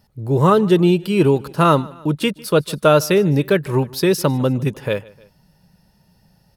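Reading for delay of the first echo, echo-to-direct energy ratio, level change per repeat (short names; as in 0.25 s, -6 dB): 0.152 s, -22.0 dB, -5.0 dB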